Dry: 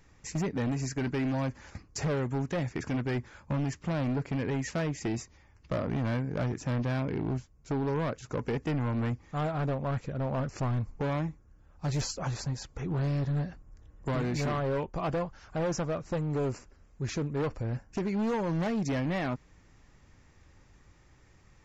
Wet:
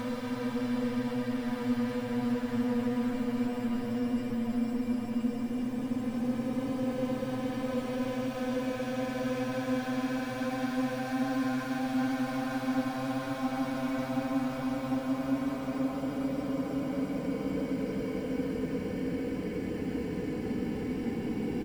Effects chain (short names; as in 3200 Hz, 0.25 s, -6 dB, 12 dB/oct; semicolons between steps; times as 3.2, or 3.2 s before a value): median filter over 9 samples; high shelf 6300 Hz +10.5 dB; comb 4 ms, depth 80%; in parallel at -9.5 dB: sample-and-hold 17×; on the sum: Paulstretch 47×, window 0.10 s, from 6.71; echo with dull and thin repeats by turns 0.74 s, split 800 Hz, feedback 75%, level -4.5 dB; gain -6 dB